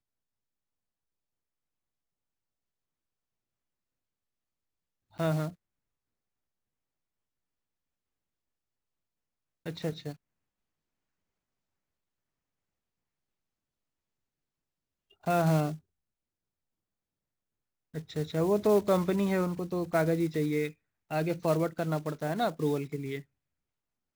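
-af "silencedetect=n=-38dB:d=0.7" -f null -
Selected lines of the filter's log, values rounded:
silence_start: 0.00
silence_end: 5.19 | silence_duration: 5.19
silence_start: 5.49
silence_end: 9.66 | silence_duration: 4.17
silence_start: 10.13
silence_end: 15.27 | silence_duration: 5.15
silence_start: 15.75
silence_end: 17.95 | silence_duration: 2.20
silence_start: 23.20
silence_end: 24.15 | silence_duration: 0.96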